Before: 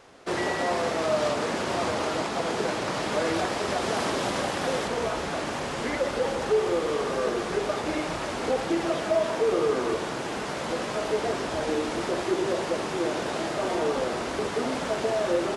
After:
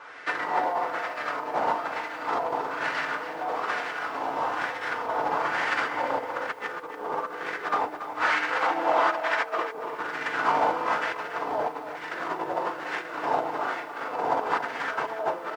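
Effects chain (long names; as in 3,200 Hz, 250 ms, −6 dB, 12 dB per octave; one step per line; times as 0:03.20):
sub-octave generator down 1 octave, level −6 dB
in parallel at −2 dB: brickwall limiter −24.5 dBFS, peak gain reduction 11.5 dB
0:08.19–0:09.67: on the sum: meter weighting curve A
single-tap delay 354 ms −10.5 dB
feedback delay network reverb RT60 0.7 s, low-frequency decay 1.3×, high-frequency decay 0.9×, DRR −5 dB
compressor whose output falls as the input rises −21 dBFS, ratio −0.5
auto-filter band-pass sine 1.1 Hz 820–1,800 Hz
feedback echo at a low word length 282 ms, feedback 35%, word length 9 bits, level −10.5 dB
level +1.5 dB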